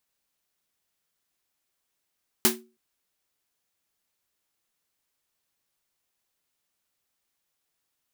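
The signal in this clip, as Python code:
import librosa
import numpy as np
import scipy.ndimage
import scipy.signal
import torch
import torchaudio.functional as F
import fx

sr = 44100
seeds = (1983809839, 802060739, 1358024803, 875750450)

y = fx.drum_snare(sr, seeds[0], length_s=0.32, hz=230.0, second_hz=370.0, noise_db=7.0, noise_from_hz=590.0, decay_s=0.34, noise_decay_s=0.19)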